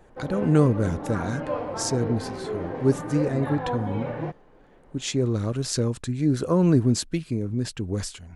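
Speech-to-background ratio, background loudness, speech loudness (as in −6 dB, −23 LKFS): 7.0 dB, −32.0 LKFS, −25.0 LKFS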